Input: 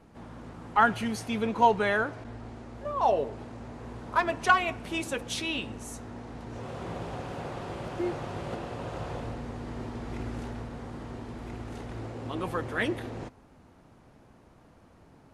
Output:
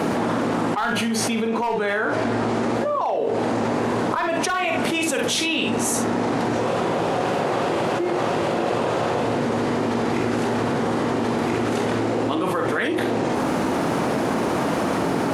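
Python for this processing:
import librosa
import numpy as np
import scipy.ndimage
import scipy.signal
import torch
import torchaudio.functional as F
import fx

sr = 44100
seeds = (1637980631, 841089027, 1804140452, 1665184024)

p1 = scipy.signal.sosfilt(scipy.signal.butter(2, 260.0, 'highpass', fs=sr, output='sos'), x)
p2 = np.clip(p1, -10.0 ** (-16.5 / 20.0), 10.0 ** (-16.5 / 20.0))
p3 = fx.low_shelf(p2, sr, hz=340.0, db=5.0)
p4 = p3 + fx.room_early_taps(p3, sr, ms=(44, 66), db=(-6.5, -11.0), dry=0)
p5 = fx.env_flatten(p4, sr, amount_pct=100)
y = p5 * librosa.db_to_amplitude(-4.0)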